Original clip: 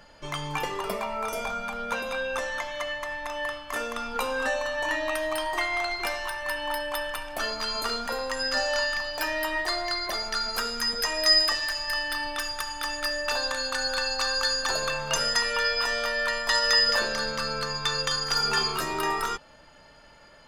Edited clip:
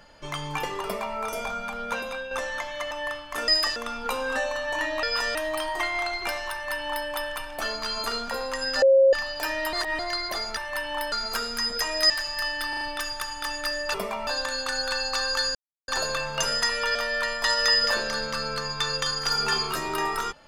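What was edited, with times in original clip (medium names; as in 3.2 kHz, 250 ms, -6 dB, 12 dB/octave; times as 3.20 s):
0.84–1.17 s: copy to 13.33 s
2.00–2.31 s: fade out, to -7 dB
2.91–3.29 s: delete
6.30–6.85 s: copy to 10.35 s
8.60–8.91 s: bleep 539 Hz -13 dBFS
9.51–9.77 s: reverse
11.33–11.61 s: move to 3.86 s
12.20 s: stutter 0.04 s, 4 plays
14.61 s: insert silence 0.33 s
15.68–16.00 s: move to 5.13 s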